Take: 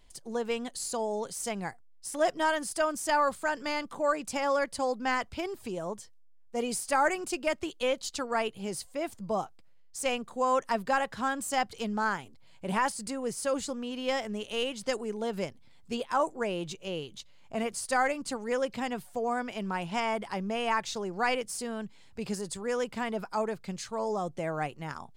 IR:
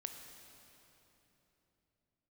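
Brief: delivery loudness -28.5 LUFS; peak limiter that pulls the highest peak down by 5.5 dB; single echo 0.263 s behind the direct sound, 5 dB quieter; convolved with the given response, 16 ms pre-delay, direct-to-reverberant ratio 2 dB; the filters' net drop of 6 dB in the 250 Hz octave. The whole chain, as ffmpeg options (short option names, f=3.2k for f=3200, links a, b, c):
-filter_complex "[0:a]equalizer=f=250:t=o:g=-7.5,alimiter=limit=-20.5dB:level=0:latency=1,aecho=1:1:263:0.562,asplit=2[a][b];[1:a]atrim=start_sample=2205,adelay=16[c];[b][c]afir=irnorm=-1:irlink=0,volume=0.5dB[d];[a][d]amix=inputs=2:normalize=0,volume=2.5dB"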